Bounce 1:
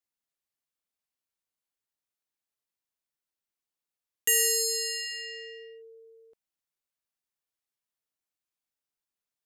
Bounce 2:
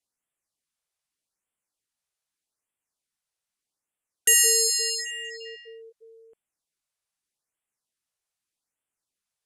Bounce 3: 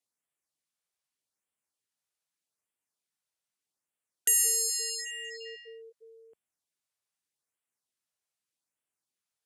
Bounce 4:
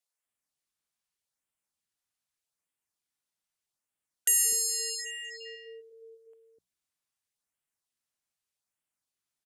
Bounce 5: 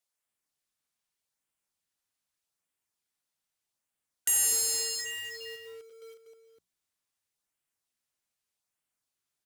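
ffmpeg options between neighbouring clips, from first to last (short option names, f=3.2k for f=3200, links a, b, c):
-af "lowpass=f=11k:w=0.5412,lowpass=f=11k:w=1.3066,highshelf=f=7.8k:g=5.5,afftfilt=real='re*(1-between(b*sr/1024,240*pow(5200/240,0.5+0.5*sin(2*PI*0.82*pts/sr))/1.41,240*pow(5200/240,0.5+0.5*sin(2*PI*0.82*pts/sr))*1.41))':imag='im*(1-between(b*sr/1024,240*pow(5200/240,0.5+0.5*sin(2*PI*0.82*pts/sr))/1.41,240*pow(5200/240,0.5+0.5*sin(2*PI*0.82*pts/sr))*1.41))':win_size=1024:overlap=0.75,volume=4dB"
-filter_complex "[0:a]highpass=83,acrossover=split=7100[a][b];[a]acompressor=threshold=-33dB:ratio=6[c];[c][b]amix=inputs=2:normalize=0,volume=-3dB"
-filter_complex "[0:a]lowshelf=f=95:g=6.5,bandreject=f=60:t=h:w=6,bandreject=f=120:t=h:w=6,bandreject=f=180:t=h:w=6,acrossover=split=430[a][b];[a]adelay=250[c];[c][b]amix=inputs=2:normalize=0"
-filter_complex "[0:a]asplit=2[a][b];[b]alimiter=level_in=1dB:limit=-24dB:level=0:latency=1,volume=-1dB,volume=-1dB[c];[a][c]amix=inputs=2:normalize=0,acrusher=bits=2:mode=log:mix=0:aa=0.000001,volume=-4.5dB"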